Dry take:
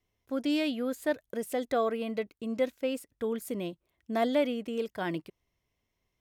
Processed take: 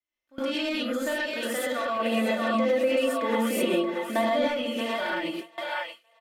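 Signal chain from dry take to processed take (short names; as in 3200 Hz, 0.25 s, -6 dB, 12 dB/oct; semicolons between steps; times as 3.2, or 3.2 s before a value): comb 3.4 ms, depth 67%; split-band echo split 600 Hz, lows 98 ms, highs 0.628 s, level -10 dB; overdrive pedal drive 14 dB, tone 2000 Hz, clips at -11.5 dBFS; tilt shelf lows -5.5 dB, about 1200 Hz; non-linear reverb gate 0.15 s rising, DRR -8 dB; limiter -14 dBFS, peak gain reduction 9 dB; compressor 6:1, threshold -24 dBFS, peak gain reduction 6 dB; 1.99–4.48 bell 380 Hz +6.5 dB 2.6 oct; gate with hold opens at -21 dBFS; gain -1.5 dB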